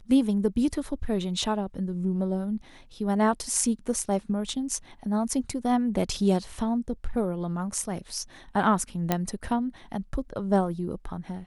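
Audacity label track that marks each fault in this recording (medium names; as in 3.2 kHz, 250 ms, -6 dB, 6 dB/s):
9.120000	9.120000	pop -9 dBFS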